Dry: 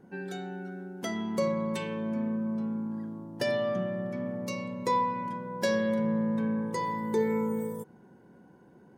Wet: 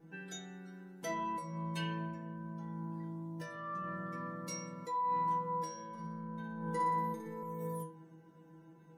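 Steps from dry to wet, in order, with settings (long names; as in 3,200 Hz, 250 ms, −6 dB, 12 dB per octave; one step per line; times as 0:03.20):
compressor whose output falls as the input rises −33 dBFS, ratio −1
stiff-string resonator 160 Hz, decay 0.5 s, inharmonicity 0.002
0:05.89–0:07.43: flutter between parallel walls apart 10.1 metres, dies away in 0.79 s
level +9 dB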